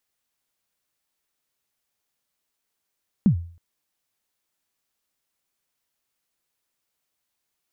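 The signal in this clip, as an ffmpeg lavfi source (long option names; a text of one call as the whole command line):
ffmpeg -f lavfi -i "aevalsrc='0.316*pow(10,-3*t/0.46)*sin(2*PI*(230*0.097/log(85/230)*(exp(log(85/230)*min(t,0.097)/0.097)-1)+85*max(t-0.097,0)))':duration=0.32:sample_rate=44100" out.wav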